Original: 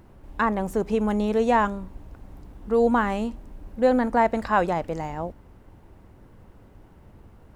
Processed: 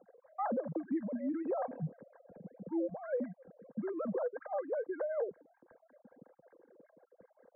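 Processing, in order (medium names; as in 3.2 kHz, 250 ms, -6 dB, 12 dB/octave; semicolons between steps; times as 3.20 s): formants replaced by sine waves; dynamic bell 530 Hz, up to -7 dB, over -32 dBFS, Q 1.6; small resonant body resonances 210/690/2200 Hz, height 16 dB, ringing for 25 ms; compression 5:1, threshold -26 dBFS, peak gain reduction 18.5 dB; pitch shift -5.5 st; peak limiter -23 dBFS, peak gain reduction 6 dB; lamp-driven phase shifter 5.3 Hz; trim -3.5 dB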